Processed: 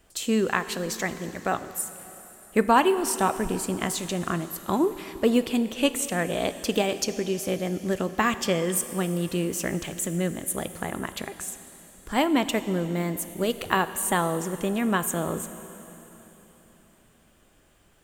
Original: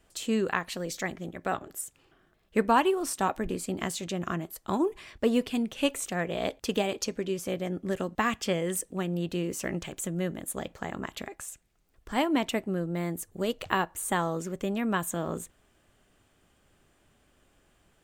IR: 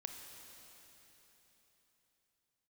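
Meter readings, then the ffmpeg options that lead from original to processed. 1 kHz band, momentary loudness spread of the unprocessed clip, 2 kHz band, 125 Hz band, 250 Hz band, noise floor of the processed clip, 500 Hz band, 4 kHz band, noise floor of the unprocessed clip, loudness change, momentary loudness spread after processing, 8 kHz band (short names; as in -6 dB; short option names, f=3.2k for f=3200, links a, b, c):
+4.0 dB, 9 LU, +4.0 dB, +4.0 dB, +4.0 dB, -59 dBFS, +4.0 dB, +4.5 dB, -67 dBFS, +4.0 dB, 10 LU, +6.5 dB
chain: -filter_complex "[0:a]asplit=2[a][b];[1:a]atrim=start_sample=2205,highshelf=f=7.8k:g=11[c];[b][c]afir=irnorm=-1:irlink=0,volume=-1dB[d];[a][d]amix=inputs=2:normalize=0"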